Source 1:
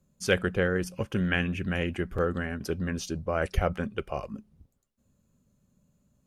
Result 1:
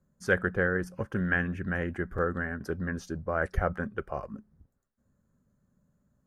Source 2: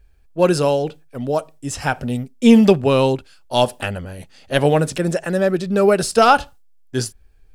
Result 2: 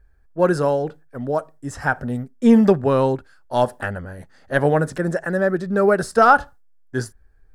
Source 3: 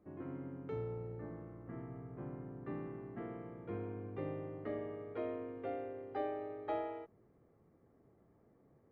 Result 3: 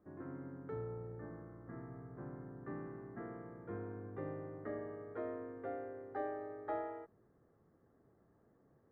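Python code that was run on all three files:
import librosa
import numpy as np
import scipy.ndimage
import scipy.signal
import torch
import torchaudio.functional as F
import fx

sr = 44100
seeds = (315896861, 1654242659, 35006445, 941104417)

y = fx.high_shelf_res(x, sr, hz=2100.0, db=-7.0, q=3.0)
y = F.gain(torch.from_numpy(y), -2.5).numpy()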